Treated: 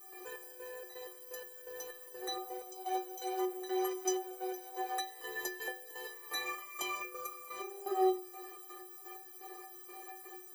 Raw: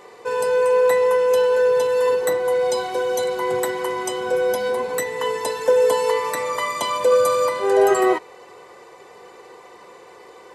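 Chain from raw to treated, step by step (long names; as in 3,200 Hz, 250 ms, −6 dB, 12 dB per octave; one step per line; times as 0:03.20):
0:02.83–0:05.20: meter weighting curve A
downward compressor 10 to 1, threshold −23 dBFS, peak gain reduction 12.5 dB
steady tone 4,400 Hz −55 dBFS
gate pattern ".xx..xx.x..x." 126 BPM −12 dB
background noise violet −47 dBFS
stiff-string resonator 360 Hz, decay 0.48 s, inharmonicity 0.03
level +11 dB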